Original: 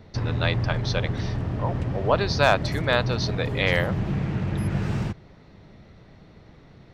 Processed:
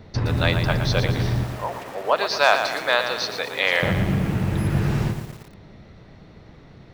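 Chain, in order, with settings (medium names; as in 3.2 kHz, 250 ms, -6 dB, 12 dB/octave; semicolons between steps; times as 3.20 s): 1.43–3.83 s: high-pass 580 Hz 12 dB/octave; bit-crushed delay 116 ms, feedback 55%, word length 7-bit, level -7.5 dB; trim +3.5 dB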